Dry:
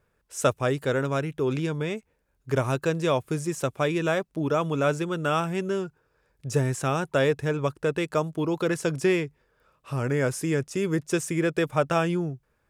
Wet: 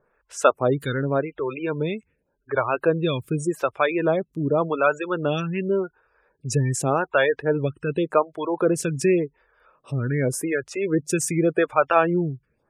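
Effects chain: spectral gate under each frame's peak -25 dB strong; bass shelf 330 Hz -5.5 dB; lamp-driven phase shifter 0.87 Hz; trim +8.5 dB

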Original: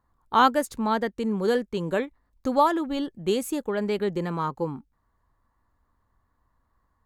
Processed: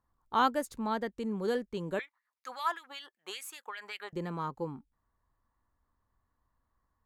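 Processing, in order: 1.99–4.13 s: LFO high-pass sine 5.2 Hz 930–2300 Hz; trim -8 dB

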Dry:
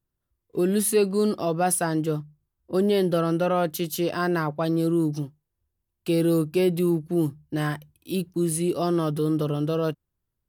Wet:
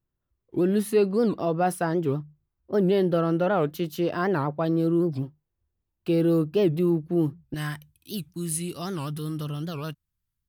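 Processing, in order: peaking EQ 9.4 kHz -14 dB 1.9 oct, from 7.54 s 470 Hz; warped record 78 rpm, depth 250 cents

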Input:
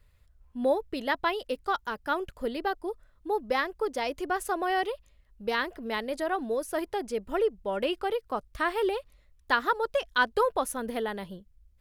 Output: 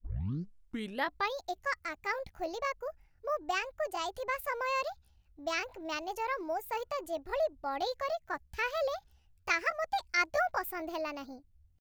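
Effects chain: tape start-up on the opening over 1.48 s; pitch shift +6 st; trim -5 dB

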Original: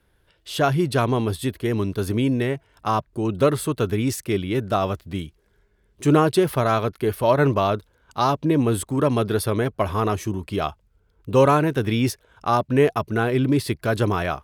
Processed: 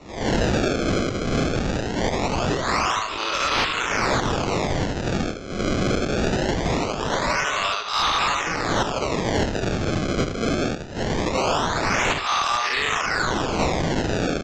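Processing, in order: reverse spectral sustain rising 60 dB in 0.77 s; recorder AGC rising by 63 dB/s; Butterworth band-pass 6 kHz, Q 0.53; bucket-brigade echo 75 ms, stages 2048, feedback 38%, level -3 dB; on a send at -13.5 dB: reverberation RT60 1.0 s, pre-delay 62 ms; on the sum: decimation with a swept rate 27×, swing 160% 0.22 Hz; wavefolder -22.5 dBFS; resampled via 16 kHz; in parallel at -8 dB: saturation -26.5 dBFS, distortion -16 dB; on the sum: three bands compressed up and down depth 40%; trim +6 dB

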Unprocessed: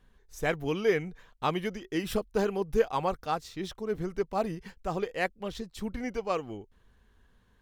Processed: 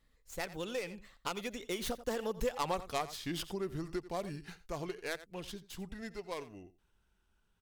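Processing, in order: tracing distortion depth 0.15 ms; Doppler pass-by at 2.73 s, 41 m/s, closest 8.7 m; treble shelf 2.5 kHz +8.5 dB; on a send: delay 86 ms -17.5 dB; on the sum: compression 4:1, threshold -48 dBFS, peak gain reduction 20.5 dB; trim +13 dB

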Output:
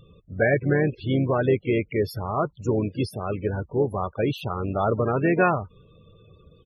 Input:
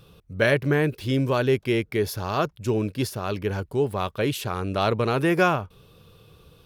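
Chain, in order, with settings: harmony voices -4 st -14 dB, +4 st -12 dB; loudest bins only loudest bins 32

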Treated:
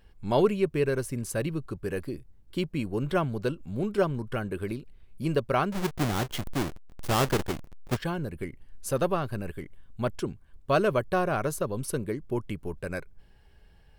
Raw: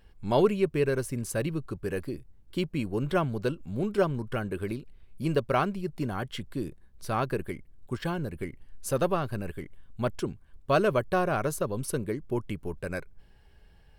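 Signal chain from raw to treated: 5.72–7.97 s: square wave that keeps the level

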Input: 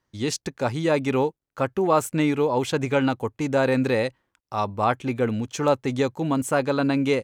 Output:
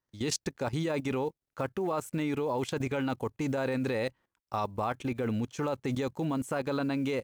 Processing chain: block-companded coder 7-bit; peak limiter -16 dBFS, peak gain reduction 8.5 dB; level held to a coarse grid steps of 15 dB

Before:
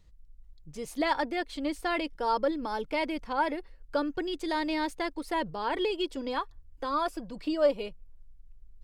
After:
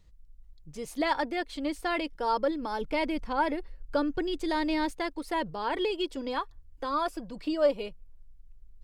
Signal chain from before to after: 2.81–4.91 s: bass shelf 220 Hz +7.5 dB

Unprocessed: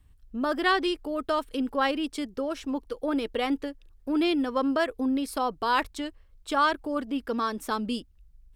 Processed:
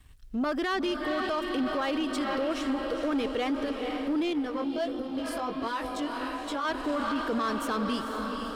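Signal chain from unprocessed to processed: treble shelf 9.9 kHz -7 dB; band-stop 870 Hz, Q 20; echo that smears into a reverb 480 ms, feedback 62%, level -8.5 dB; 4.63–5.21 s: time-frequency box 840–2700 Hz -8 dB; peak limiter -22.5 dBFS, peak gain reduction 11 dB; waveshaping leveller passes 1; 4.33–6.65 s: chorus 1.4 Hz, delay 17 ms, depth 3.9 ms; tape noise reduction on one side only encoder only

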